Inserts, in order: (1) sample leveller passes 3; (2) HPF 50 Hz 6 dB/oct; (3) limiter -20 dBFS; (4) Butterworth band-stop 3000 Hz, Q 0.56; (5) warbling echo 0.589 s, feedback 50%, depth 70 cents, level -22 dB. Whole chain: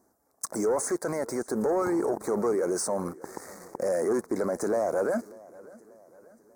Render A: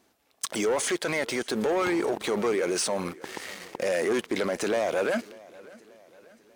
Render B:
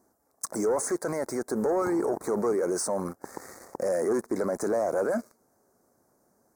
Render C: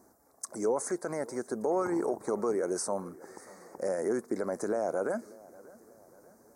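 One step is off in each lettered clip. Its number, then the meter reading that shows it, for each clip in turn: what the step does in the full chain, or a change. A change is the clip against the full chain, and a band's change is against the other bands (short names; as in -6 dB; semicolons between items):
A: 4, 4 kHz band +13.0 dB; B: 5, momentary loudness spread change -4 LU; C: 1, momentary loudness spread change +2 LU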